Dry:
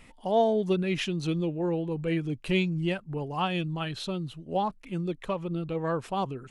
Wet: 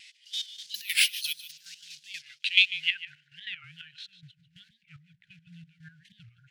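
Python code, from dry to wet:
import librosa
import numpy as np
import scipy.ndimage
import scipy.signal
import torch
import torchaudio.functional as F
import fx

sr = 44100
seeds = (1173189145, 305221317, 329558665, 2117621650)

y = fx.block_float(x, sr, bits=5)
y = fx.filter_sweep_bandpass(y, sr, from_hz=4900.0, to_hz=320.0, start_s=2.24, end_s=4.45, q=1.7)
y = fx.resample_bad(y, sr, factor=3, down='filtered', up='zero_stuff', at=(0.75, 1.52))
y = fx.high_shelf(y, sr, hz=3400.0, db=-10.5, at=(3.1, 3.61), fade=0.02)
y = fx.step_gate(y, sr, bpm=181, pattern='xx..x..x.x.', floor_db=-12.0, edge_ms=4.5)
y = fx.weighting(y, sr, curve='D')
y = y + 10.0 ** (-14.5 / 20.0) * np.pad(y, (int(148 * sr / 1000.0), 0))[:len(y)]
y = fx.vibrato(y, sr, rate_hz=3.5, depth_cents=39.0)
y = fx.brickwall_bandstop(y, sr, low_hz=160.0, high_hz=1400.0)
y = fx.record_warp(y, sr, rpm=45.0, depth_cents=250.0)
y = y * 10.0 ** (5.5 / 20.0)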